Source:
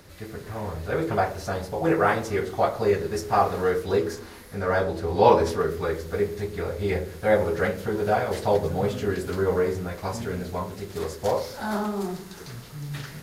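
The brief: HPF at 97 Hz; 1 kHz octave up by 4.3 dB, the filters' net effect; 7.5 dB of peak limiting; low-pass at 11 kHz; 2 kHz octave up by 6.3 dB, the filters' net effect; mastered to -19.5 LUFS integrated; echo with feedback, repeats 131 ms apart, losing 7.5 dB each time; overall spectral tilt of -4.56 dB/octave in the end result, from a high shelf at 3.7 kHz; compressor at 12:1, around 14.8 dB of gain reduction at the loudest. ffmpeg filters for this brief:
-af "highpass=97,lowpass=11000,equalizer=f=1000:t=o:g=4,equalizer=f=2000:t=o:g=5,highshelf=f=3700:g=7.5,acompressor=threshold=0.0708:ratio=12,alimiter=limit=0.1:level=0:latency=1,aecho=1:1:131|262|393|524|655:0.422|0.177|0.0744|0.0312|0.0131,volume=3.35"

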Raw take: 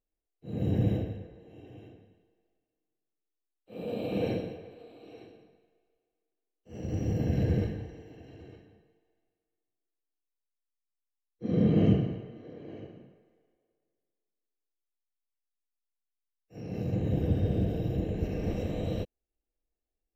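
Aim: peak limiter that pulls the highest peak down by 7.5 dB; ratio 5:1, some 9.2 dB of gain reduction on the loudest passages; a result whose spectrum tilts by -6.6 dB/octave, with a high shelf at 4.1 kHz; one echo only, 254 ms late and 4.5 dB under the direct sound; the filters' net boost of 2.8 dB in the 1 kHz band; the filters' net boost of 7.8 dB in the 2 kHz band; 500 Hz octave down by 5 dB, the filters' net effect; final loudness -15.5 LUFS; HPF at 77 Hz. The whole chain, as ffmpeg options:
-af "highpass=77,equalizer=f=500:t=o:g=-8,equalizer=f=1000:t=o:g=7.5,equalizer=f=2000:t=o:g=7,highshelf=f=4100:g=5,acompressor=threshold=0.0316:ratio=5,alimiter=level_in=1.88:limit=0.0631:level=0:latency=1,volume=0.531,aecho=1:1:254:0.596,volume=15.8"

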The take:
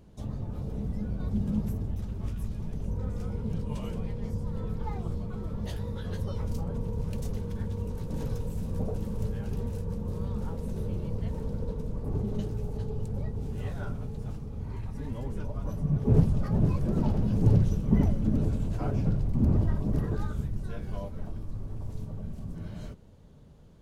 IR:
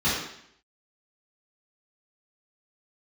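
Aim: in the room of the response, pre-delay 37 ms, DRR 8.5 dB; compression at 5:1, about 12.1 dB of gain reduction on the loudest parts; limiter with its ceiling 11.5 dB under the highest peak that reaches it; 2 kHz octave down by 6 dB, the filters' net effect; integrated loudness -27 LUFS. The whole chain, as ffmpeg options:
-filter_complex "[0:a]equalizer=f=2000:t=o:g=-8.5,acompressor=threshold=0.0316:ratio=5,alimiter=level_in=2.82:limit=0.0631:level=0:latency=1,volume=0.355,asplit=2[s0][s1];[1:a]atrim=start_sample=2205,adelay=37[s2];[s1][s2]afir=irnorm=-1:irlink=0,volume=0.0708[s3];[s0][s3]amix=inputs=2:normalize=0,volume=5.01"

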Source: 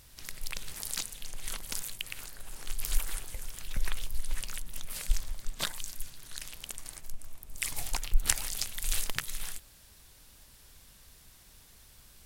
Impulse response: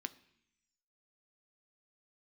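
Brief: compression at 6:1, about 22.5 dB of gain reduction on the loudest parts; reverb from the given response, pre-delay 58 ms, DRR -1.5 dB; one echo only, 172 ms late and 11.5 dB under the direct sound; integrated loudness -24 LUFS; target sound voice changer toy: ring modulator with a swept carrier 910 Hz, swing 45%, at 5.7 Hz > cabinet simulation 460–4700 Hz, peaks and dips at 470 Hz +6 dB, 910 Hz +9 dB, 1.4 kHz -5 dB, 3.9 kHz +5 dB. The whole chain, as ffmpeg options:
-filter_complex "[0:a]acompressor=threshold=0.00794:ratio=6,aecho=1:1:172:0.266,asplit=2[s0][s1];[1:a]atrim=start_sample=2205,adelay=58[s2];[s1][s2]afir=irnorm=-1:irlink=0,volume=1.5[s3];[s0][s3]amix=inputs=2:normalize=0,aeval=exprs='val(0)*sin(2*PI*910*n/s+910*0.45/5.7*sin(2*PI*5.7*n/s))':c=same,highpass=460,equalizer=f=470:t=q:w=4:g=6,equalizer=f=910:t=q:w=4:g=9,equalizer=f=1400:t=q:w=4:g=-5,equalizer=f=3900:t=q:w=4:g=5,lowpass=f=4700:w=0.5412,lowpass=f=4700:w=1.3066,volume=11.2"

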